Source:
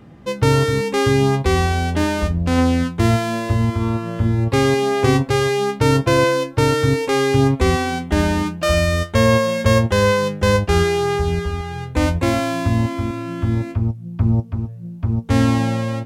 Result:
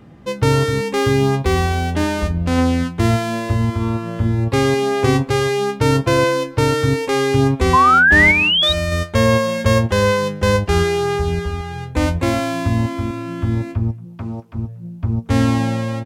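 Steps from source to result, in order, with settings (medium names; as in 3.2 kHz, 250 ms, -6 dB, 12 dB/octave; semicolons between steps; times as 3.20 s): 0.95–1.93 s: median filter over 5 samples; 14.04–14.54 s: high-pass 270 Hz -> 840 Hz 6 dB/octave; speakerphone echo 230 ms, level -23 dB; 7.73–8.73 s: painted sound rise 1–3.9 kHz -11 dBFS; 8.31–8.92 s: compression 1.5:1, threshold -21 dBFS, peak gain reduction 5 dB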